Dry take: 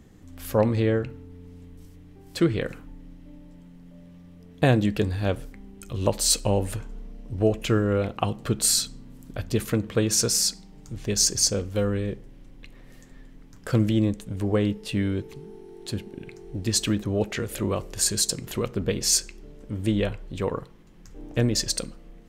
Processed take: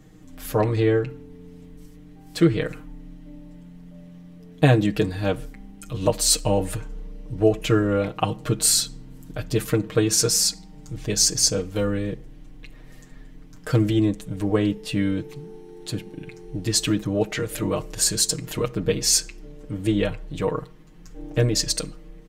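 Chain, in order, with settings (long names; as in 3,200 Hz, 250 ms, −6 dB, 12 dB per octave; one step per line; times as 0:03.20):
comb filter 6.5 ms, depth 90%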